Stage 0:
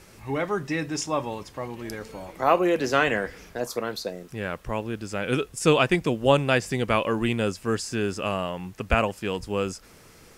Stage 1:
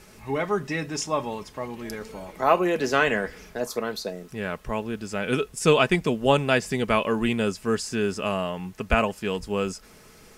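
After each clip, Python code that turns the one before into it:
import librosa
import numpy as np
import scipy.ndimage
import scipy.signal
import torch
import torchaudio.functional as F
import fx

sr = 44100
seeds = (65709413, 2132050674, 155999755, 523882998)

y = x + 0.35 * np.pad(x, (int(4.7 * sr / 1000.0), 0))[:len(x)]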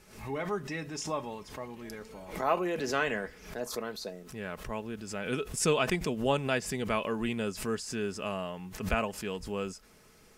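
y = fx.pre_swell(x, sr, db_per_s=97.0)
y = y * 10.0 ** (-8.5 / 20.0)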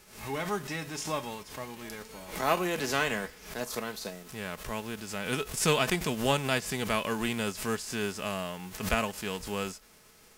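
y = fx.envelope_flatten(x, sr, power=0.6)
y = y * 10.0 ** (1.0 / 20.0)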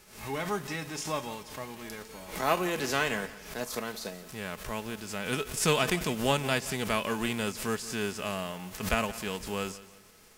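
y = fx.echo_feedback(x, sr, ms=174, feedback_pct=37, wet_db=-17)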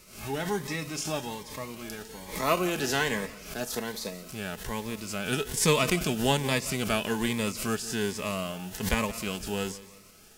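y = fx.notch_cascade(x, sr, direction='rising', hz=1.2)
y = y * 10.0 ** (3.5 / 20.0)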